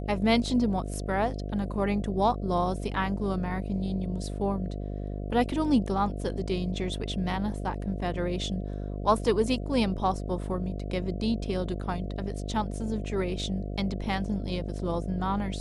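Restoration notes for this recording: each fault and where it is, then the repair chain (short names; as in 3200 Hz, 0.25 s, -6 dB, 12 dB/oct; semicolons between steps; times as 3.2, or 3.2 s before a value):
buzz 50 Hz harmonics 14 -34 dBFS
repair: de-hum 50 Hz, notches 14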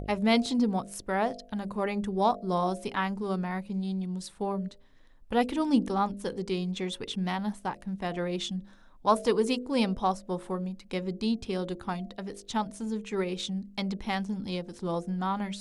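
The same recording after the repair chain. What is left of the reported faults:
none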